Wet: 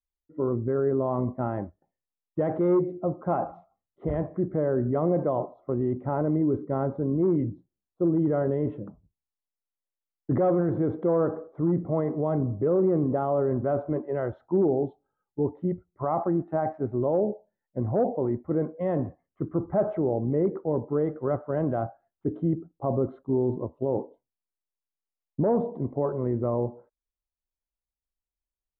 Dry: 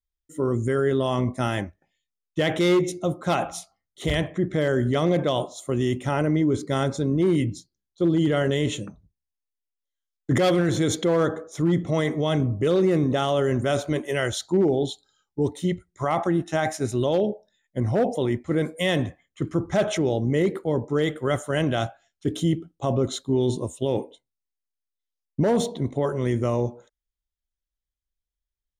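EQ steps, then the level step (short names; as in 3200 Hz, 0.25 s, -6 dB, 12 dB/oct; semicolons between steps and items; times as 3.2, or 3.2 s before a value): LPF 1100 Hz 24 dB/oct; low shelf 160 Hz -5 dB; -1.5 dB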